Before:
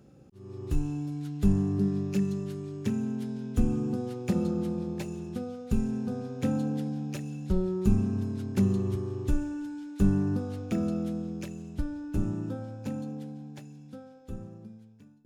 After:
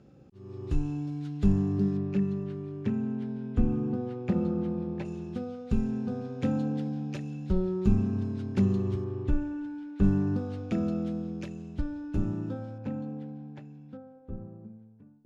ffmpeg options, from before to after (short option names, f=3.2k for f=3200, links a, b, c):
-af "asetnsamples=n=441:p=0,asendcmd='1.97 lowpass f 2400;5.05 lowpass f 4500;9.04 lowpass f 2700;10.03 lowpass f 4600;12.78 lowpass f 2300;13.97 lowpass f 1100',lowpass=5k"